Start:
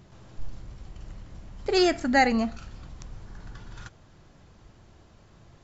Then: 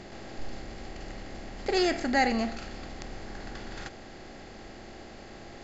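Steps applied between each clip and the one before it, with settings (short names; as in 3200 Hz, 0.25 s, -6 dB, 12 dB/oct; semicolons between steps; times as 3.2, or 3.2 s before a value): per-bin compression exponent 0.6; gain -5.5 dB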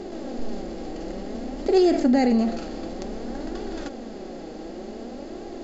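ten-band EQ 125 Hz -6 dB, 250 Hz +11 dB, 500 Hz +8 dB, 2000 Hz -6 dB; in parallel at -2.5 dB: negative-ratio compressor -24 dBFS, ratio -1; on the sum: flange 0.55 Hz, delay 2.4 ms, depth 4.2 ms, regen +47%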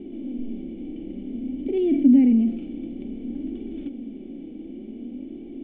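vocal tract filter i; gain +6.5 dB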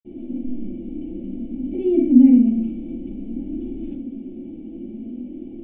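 reverb RT60 0.35 s, pre-delay 46 ms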